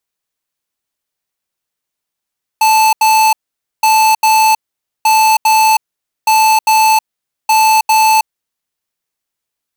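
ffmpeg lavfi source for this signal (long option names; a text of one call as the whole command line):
ffmpeg -f lavfi -i "aevalsrc='0.355*(2*lt(mod(876*t,1),0.5)-1)*clip(min(mod(mod(t,1.22),0.4),0.32-mod(mod(t,1.22),0.4))/0.005,0,1)*lt(mod(t,1.22),0.8)':duration=6.1:sample_rate=44100" out.wav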